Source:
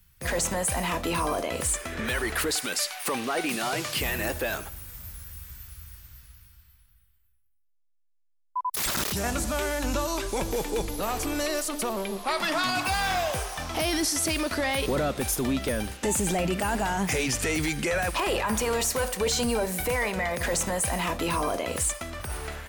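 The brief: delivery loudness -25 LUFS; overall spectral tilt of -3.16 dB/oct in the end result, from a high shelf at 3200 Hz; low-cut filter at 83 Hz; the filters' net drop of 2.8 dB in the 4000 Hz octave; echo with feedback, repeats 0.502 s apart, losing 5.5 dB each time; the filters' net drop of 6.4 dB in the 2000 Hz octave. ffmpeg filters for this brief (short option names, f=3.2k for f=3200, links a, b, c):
-af "highpass=83,equalizer=f=2k:t=o:g=-8.5,highshelf=f=3.2k:g=3,equalizer=f=4k:t=o:g=-3.5,aecho=1:1:502|1004|1506|2008|2510|3012|3514:0.531|0.281|0.149|0.079|0.0419|0.0222|0.0118,volume=1.5dB"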